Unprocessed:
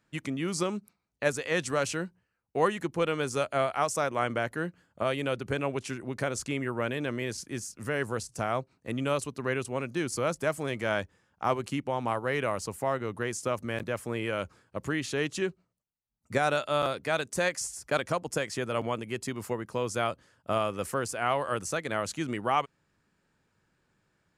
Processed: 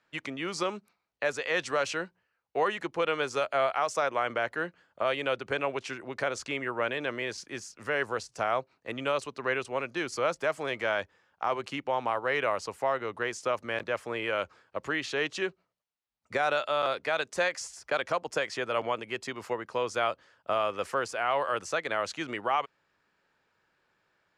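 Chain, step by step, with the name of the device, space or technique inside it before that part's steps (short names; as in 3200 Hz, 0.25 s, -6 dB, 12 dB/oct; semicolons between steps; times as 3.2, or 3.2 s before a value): DJ mixer with the lows and highs turned down (three-band isolator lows -14 dB, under 410 Hz, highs -18 dB, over 5600 Hz; limiter -20.5 dBFS, peak gain reduction 6.5 dB); gain +3.5 dB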